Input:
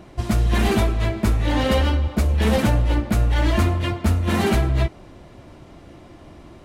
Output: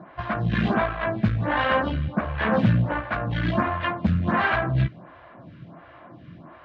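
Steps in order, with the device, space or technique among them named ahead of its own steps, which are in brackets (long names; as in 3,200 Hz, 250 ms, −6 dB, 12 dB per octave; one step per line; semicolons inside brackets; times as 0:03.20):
vibe pedal into a guitar amplifier (phaser with staggered stages 1.4 Hz; tube saturation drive 17 dB, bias 0.5; loudspeaker in its box 100–3,500 Hz, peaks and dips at 120 Hz +7 dB, 170 Hz +9 dB, 400 Hz −8 dB, 660 Hz +4 dB, 1,100 Hz +8 dB, 1,600 Hz +10 dB)
level +2 dB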